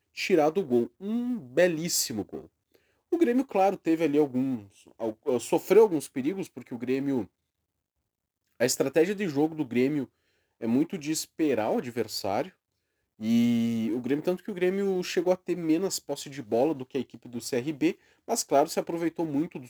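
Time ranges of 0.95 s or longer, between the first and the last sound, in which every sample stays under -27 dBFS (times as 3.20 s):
7.21–8.61 s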